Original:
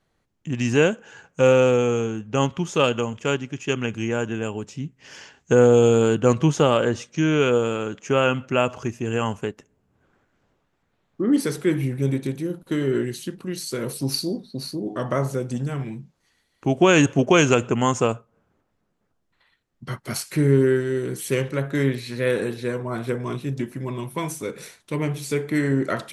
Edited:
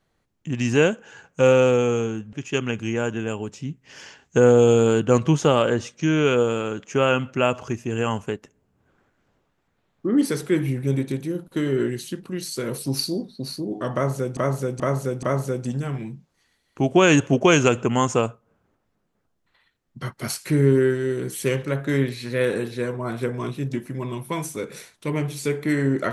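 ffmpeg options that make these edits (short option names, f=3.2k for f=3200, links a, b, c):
-filter_complex "[0:a]asplit=5[a][b][c][d][e];[a]atrim=end=2.332[f];[b]atrim=start=3.478:end=15.522[g];[c]atrim=start=15.088:end=15.522[h];[d]atrim=start=15.088:end=15.522[i];[e]atrim=start=15.088[j];[f][g]acrossfade=d=0.004:c1=hsin:c2=hsin[k];[k][h]acrossfade=d=0.004:c1=hsin:c2=hsin[l];[l][i]acrossfade=d=0.004:c1=hsin:c2=hsin[m];[m][j]acrossfade=d=0.004:c1=hsin:c2=hsin"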